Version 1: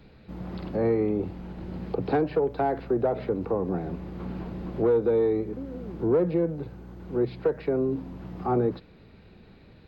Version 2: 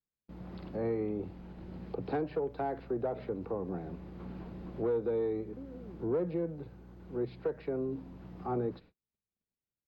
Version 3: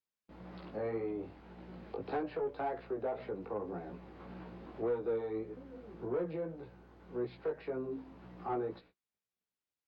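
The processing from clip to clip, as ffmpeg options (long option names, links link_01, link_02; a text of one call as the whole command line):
ffmpeg -i in.wav -af "agate=range=-40dB:threshold=-45dB:ratio=16:detection=peak,volume=-9dB" out.wav
ffmpeg -i in.wav -filter_complex "[0:a]flanger=delay=16:depth=3.3:speed=1.8,asplit=2[link_01][link_02];[link_02]highpass=frequency=720:poles=1,volume=12dB,asoftclip=type=tanh:threshold=-23.5dB[link_03];[link_01][link_03]amix=inputs=2:normalize=0,lowpass=frequency=3400:poles=1,volume=-6dB,volume=-1.5dB" out.wav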